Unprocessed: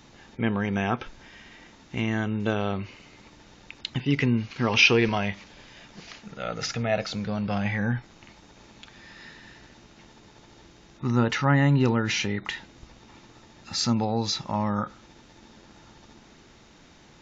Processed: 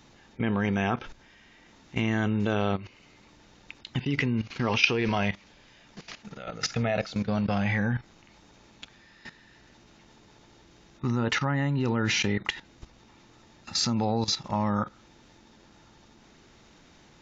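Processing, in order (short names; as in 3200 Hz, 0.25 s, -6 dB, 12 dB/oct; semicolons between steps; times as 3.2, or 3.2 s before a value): level quantiser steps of 15 dB; gain +4 dB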